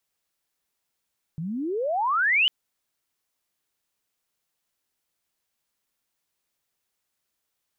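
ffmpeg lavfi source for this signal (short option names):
-f lavfi -i "aevalsrc='pow(10,(-28.5+12*t/1.1)/20)*sin(2*PI*150*1.1/log(3100/150)*(exp(log(3100/150)*t/1.1)-1))':d=1.1:s=44100"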